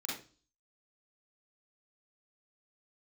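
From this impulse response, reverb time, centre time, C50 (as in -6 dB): 0.35 s, 47 ms, 1.5 dB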